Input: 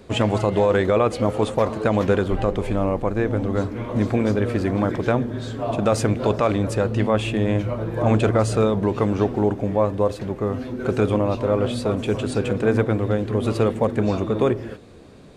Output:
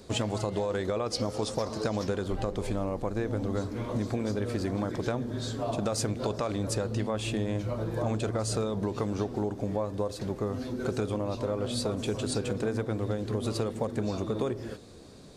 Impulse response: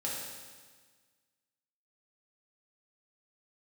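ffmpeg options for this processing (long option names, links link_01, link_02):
-filter_complex "[0:a]asettb=1/sr,asplit=3[link_01][link_02][link_03];[link_01]atrim=end=1.064[link_04];[link_02]atrim=start=1.06:end=2.08,asetpts=PTS-STARTPTS,afade=type=in:duration=0.004:curve=qsin,afade=type=out:start_time=1.016:duration=0.004:curve=qsin,equalizer=frequency=5300:width=3:gain=11.5[link_05];[link_03]atrim=start=2.076[link_06];[link_04][link_05]acrossfade=duration=0.004:curve1=hsin:curve2=qsin[link_07];[link_07][link_06]acrossfade=duration=0.004:curve1=qsin:curve2=hsin,acompressor=threshold=-22dB:ratio=6,highshelf=frequency=3500:width_type=q:width=1.5:gain=7,volume=-4.5dB"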